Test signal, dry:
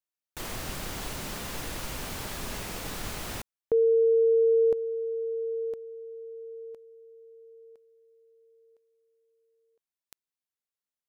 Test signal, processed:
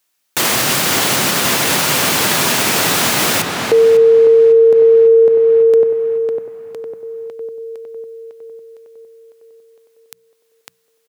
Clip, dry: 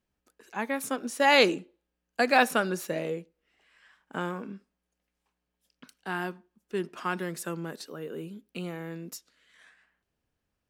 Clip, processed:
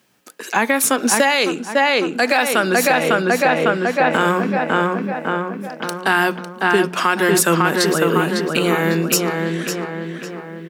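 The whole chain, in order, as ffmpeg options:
ffmpeg -i in.wav -filter_complex "[0:a]highpass=frequency=120:width=0.5412,highpass=frequency=120:width=1.3066,tiltshelf=frequency=970:gain=-3,bandreject=frequency=60:width_type=h:width=6,bandreject=frequency=120:width_type=h:width=6,bandreject=frequency=180:width_type=h:width=6,asplit=2[link_01][link_02];[link_02]adelay=552,lowpass=frequency=2900:poles=1,volume=-4dB,asplit=2[link_03][link_04];[link_04]adelay=552,lowpass=frequency=2900:poles=1,volume=0.53,asplit=2[link_05][link_06];[link_06]adelay=552,lowpass=frequency=2900:poles=1,volume=0.53,asplit=2[link_07][link_08];[link_08]adelay=552,lowpass=frequency=2900:poles=1,volume=0.53,asplit=2[link_09][link_10];[link_10]adelay=552,lowpass=frequency=2900:poles=1,volume=0.53,asplit=2[link_11][link_12];[link_12]adelay=552,lowpass=frequency=2900:poles=1,volume=0.53,asplit=2[link_13][link_14];[link_14]adelay=552,lowpass=frequency=2900:poles=1,volume=0.53[link_15];[link_03][link_05][link_07][link_09][link_11][link_13][link_15]amix=inputs=7:normalize=0[link_16];[link_01][link_16]amix=inputs=2:normalize=0,acompressor=threshold=-27dB:ratio=4:attack=0.2:release=599:knee=6:detection=rms,alimiter=level_in=26.5dB:limit=-1dB:release=50:level=0:latency=1,volume=-3.5dB" out.wav

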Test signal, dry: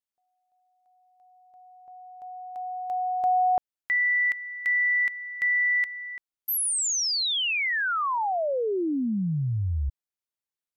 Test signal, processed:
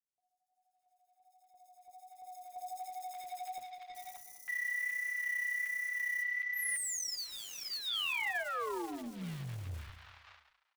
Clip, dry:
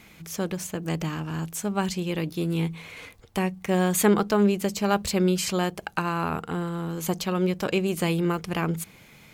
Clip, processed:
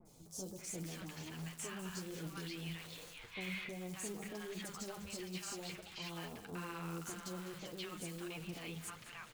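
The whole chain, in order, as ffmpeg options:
ffmpeg -i in.wav -filter_complex "[0:a]acompressor=threshold=-28dB:ratio=6:attack=0.61:release=23:knee=6:detection=rms,lowpass=frequency=10000:width=0.5412,lowpass=frequency=10000:width=1.3066,bandreject=frequency=50:width_type=h:width=6,bandreject=frequency=100:width_type=h:width=6,bandreject=frequency=150:width_type=h:width=6,bandreject=frequency=200:width_type=h:width=6,bandreject=frequency=250:width_type=h:width=6,bandreject=frequency=300:width_type=h:width=6,alimiter=level_in=7.5dB:limit=-24dB:level=0:latency=1:release=42,volume=-7.5dB,flanger=delay=5.4:depth=6.2:regen=-4:speed=1.3:shape=triangular,adynamicequalizer=threshold=0.00224:dfrequency=3400:dqfactor=0.93:tfrequency=3400:tqfactor=0.93:attack=5:release=100:ratio=0.417:range=2:mode=boostabove:tftype=bell,asplit=2[link_01][link_02];[link_02]aecho=0:1:202|404|606:0.2|0.0638|0.0204[link_03];[link_01][link_03]amix=inputs=2:normalize=0,acrusher=bits=3:mode=log:mix=0:aa=0.000001,equalizer=frequency=160:width=0.3:gain=-5.5,acrossover=split=860|4700[link_04][link_05][link_06];[link_06]adelay=50[link_07];[link_05]adelay=580[link_08];[link_04][link_08][link_07]amix=inputs=3:normalize=0" out.wav

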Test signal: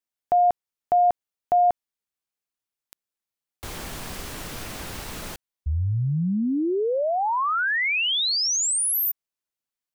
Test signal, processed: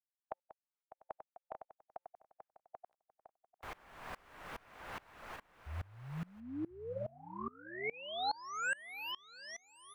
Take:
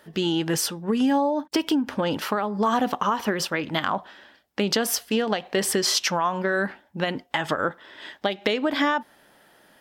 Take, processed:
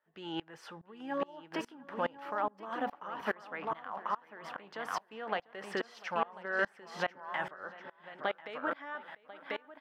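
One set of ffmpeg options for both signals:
ffmpeg -i in.wav -filter_complex "[0:a]acrossover=split=590 2300:gain=0.2 1 0.1[link_01][link_02][link_03];[link_01][link_02][link_03]amix=inputs=3:normalize=0,asplit=2[link_04][link_05];[link_05]aecho=0:1:1042:0.473[link_06];[link_04][link_06]amix=inputs=2:normalize=0,acrossover=split=7200[link_07][link_08];[link_08]acompressor=threshold=-57dB:ratio=4:attack=1:release=60[link_09];[link_07][link_09]amix=inputs=2:normalize=0,afftfilt=real='re*lt(hypot(re,im),0.447)':imag='im*lt(hypot(re,im),0.447)':win_size=1024:overlap=0.75,asplit=2[link_10][link_11];[link_11]adelay=696,lowpass=frequency=4400:poles=1,volume=-13.5dB,asplit=2[link_12][link_13];[link_13]adelay=696,lowpass=frequency=4400:poles=1,volume=0.38,asplit=2[link_14][link_15];[link_15]adelay=696,lowpass=frequency=4400:poles=1,volume=0.38,asplit=2[link_16][link_17];[link_17]adelay=696,lowpass=frequency=4400:poles=1,volume=0.38[link_18];[link_12][link_14][link_16][link_18]amix=inputs=4:normalize=0[link_19];[link_10][link_19]amix=inputs=2:normalize=0,aeval=exprs='val(0)*pow(10,-26*if(lt(mod(-2.4*n/s,1),2*abs(-2.4)/1000),1-mod(-2.4*n/s,1)/(2*abs(-2.4)/1000),(mod(-2.4*n/s,1)-2*abs(-2.4)/1000)/(1-2*abs(-2.4)/1000))/20)':channel_layout=same" out.wav

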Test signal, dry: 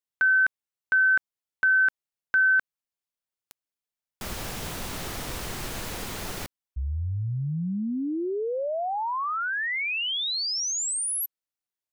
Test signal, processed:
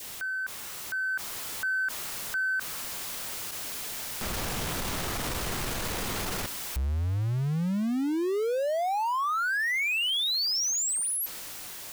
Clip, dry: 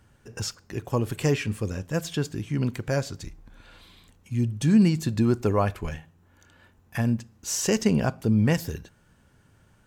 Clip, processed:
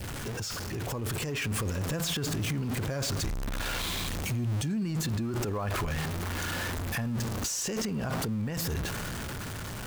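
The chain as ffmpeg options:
ffmpeg -i in.wav -af "aeval=exprs='val(0)+0.5*0.0266*sgn(val(0))':channel_layout=same,adynamicequalizer=threshold=0.0126:dfrequency=1200:dqfactor=2.2:tfrequency=1200:tqfactor=2.2:attack=5:release=100:ratio=0.375:range=2:mode=boostabove:tftype=bell,acompressor=threshold=-31dB:ratio=6:release=39:detection=peak,alimiter=level_in=5dB:limit=-24dB:level=0:latency=1:release=19,volume=-5dB,dynaudnorm=framelen=190:gausssize=11:maxgain=4dB" out.wav

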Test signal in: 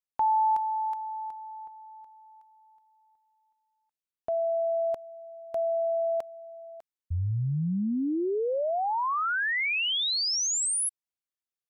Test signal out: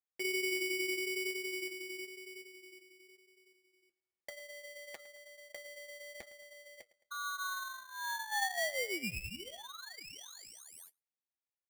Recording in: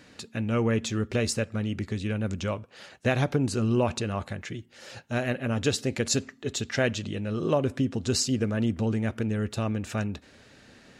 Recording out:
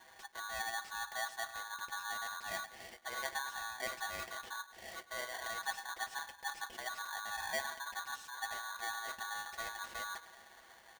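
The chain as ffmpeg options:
ffmpeg -i in.wav -filter_complex "[0:a]dynaudnorm=framelen=650:gausssize=5:maxgain=5dB,aresample=22050,aresample=44100,areverse,acompressor=threshold=-33dB:ratio=12:attack=2.4:release=80:knee=6:detection=peak,areverse,aecho=1:1:6.8:0.7,afreqshift=53,highshelf=frequency=2300:gain=-11,flanger=delay=5.4:depth=5.9:regen=-60:speed=0.99:shape=triangular,equalizer=frequency=125:width_type=o:width=1:gain=8,equalizer=frequency=250:width_type=o:width=1:gain=-9,equalizer=frequency=500:width_type=o:width=1:gain=7,equalizer=frequency=1000:width_type=o:width=1:gain=4,equalizer=frequency=2000:width_type=o:width=1:gain=-5,equalizer=frequency=8000:width_type=o:width=1:gain=-4,asplit=2[link_01][link_02];[link_02]adelay=108,lowpass=frequency=1400:poles=1,volume=-17dB,asplit=2[link_03][link_04];[link_04]adelay=108,lowpass=frequency=1400:poles=1,volume=0.55,asplit=2[link_05][link_06];[link_06]adelay=108,lowpass=frequency=1400:poles=1,volume=0.55,asplit=2[link_07][link_08];[link_08]adelay=108,lowpass=frequency=1400:poles=1,volume=0.55,asplit=2[link_09][link_10];[link_10]adelay=108,lowpass=frequency=1400:poles=1,volume=0.55[link_11];[link_03][link_05][link_07][link_09][link_11]amix=inputs=5:normalize=0[link_12];[link_01][link_12]amix=inputs=2:normalize=0,aeval=exprs='val(0)*sgn(sin(2*PI*1300*n/s))':channel_layout=same,volume=-3.5dB" out.wav

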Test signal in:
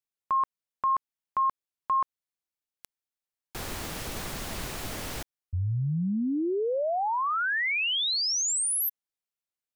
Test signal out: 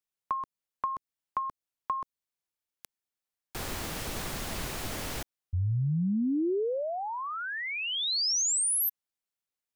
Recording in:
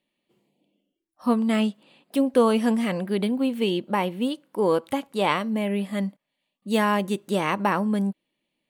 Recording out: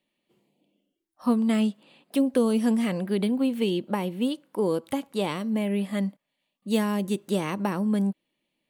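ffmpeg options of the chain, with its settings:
ffmpeg -i in.wav -filter_complex "[0:a]acrossover=split=430|4100[link_01][link_02][link_03];[link_02]acompressor=threshold=-36dB:ratio=6:attack=78:release=378:knee=2.83:detection=peak[link_04];[link_01][link_04][link_03]amix=inputs=3:normalize=0" out.wav

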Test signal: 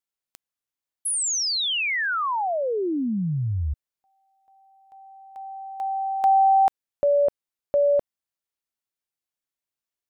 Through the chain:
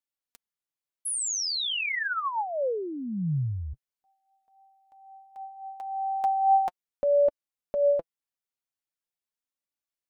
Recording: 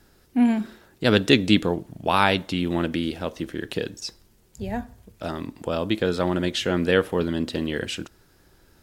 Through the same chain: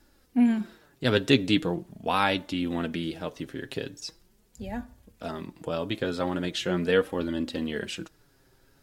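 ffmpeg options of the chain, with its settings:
ffmpeg -i in.wav -af "flanger=delay=3.4:depth=4.2:regen=30:speed=0.41:shape=sinusoidal,volume=-1dB" out.wav

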